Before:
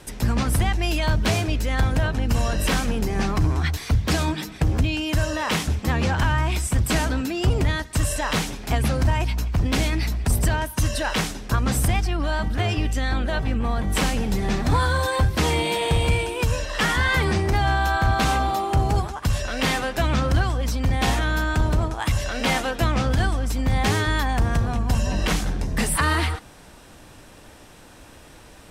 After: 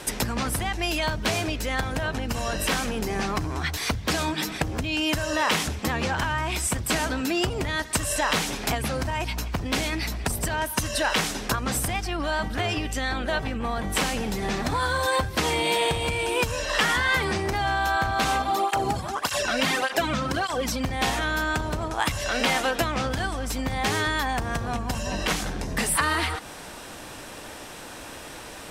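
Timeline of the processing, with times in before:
18.42–20.85 tape flanging out of phase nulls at 1.7 Hz, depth 2.8 ms
whole clip: compressor, threshold -28 dBFS; low shelf 200 Hz -11 dB; gain +9 dB

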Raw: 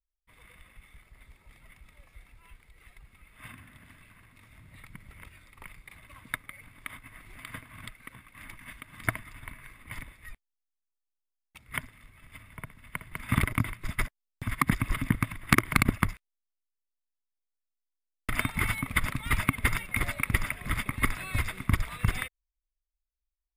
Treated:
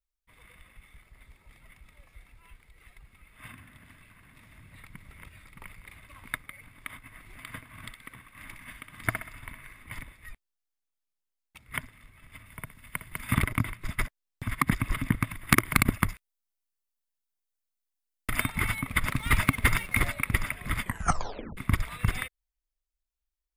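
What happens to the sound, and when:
3.63–6.5 echo 0.618 s -6 dB
7.71–9.86 thinning echo 63 ms, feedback 42%, level -7 dB
12.46–13.34 high shelf 4600 Hz +8 dB
15.31–18.47 high shelf 7100 Hz +6.5 dB
19.07–20.08 sample leveller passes 1
20.81 tape stop 0.76 s

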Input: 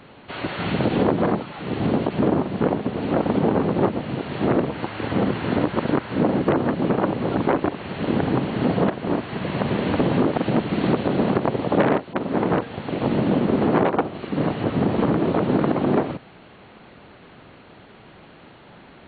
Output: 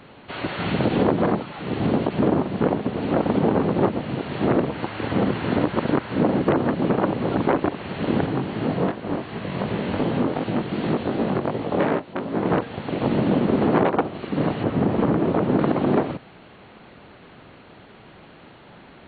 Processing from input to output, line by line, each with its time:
8.26–12.45 chorus 2.7 Hz, delay 17.5 ms, depth 4.9 ms
14.63–15.59 high shelf 4000 Hz -10.5 dB

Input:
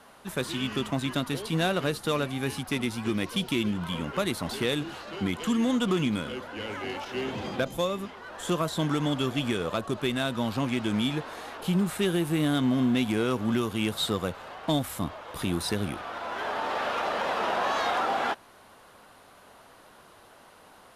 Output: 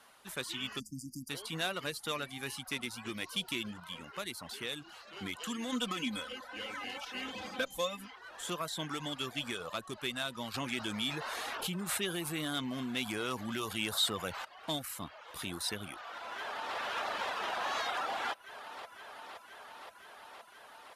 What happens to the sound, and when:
0.79–1.29 spectral delete 330–4600 Hz
3.8–5.16 gain -3.5 dB
5.72–8.17 comb 3.9 ms, depth 80%
10.54–14.45 fast leveller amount 50%
16.16–16.77 echo throw 0.52 s, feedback 80%, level -1.5 dB
whole clip: reverb removal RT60 0.52 s; tilt shelf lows -6 dB, about 880 Hz; gain -8.5 dB

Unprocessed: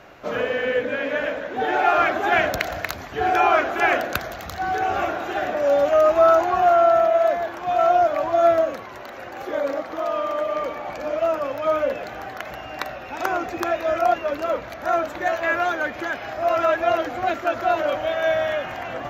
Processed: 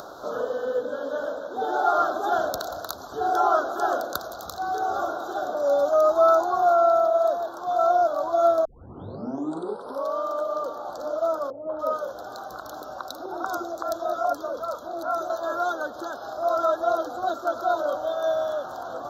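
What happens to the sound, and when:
8.65 tape start 1.55 s
11.5–15.3 three bands offset in time lows, mids, highs 0.19/0.29 s, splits 590/2500 Hz
whole clip: elliptic band-stop 1400–3700 Hz, stop band 50 dB; tone controls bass -12 dB, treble +2 dB; upward compressor, threshold -29 dBFS; gain -2 dB

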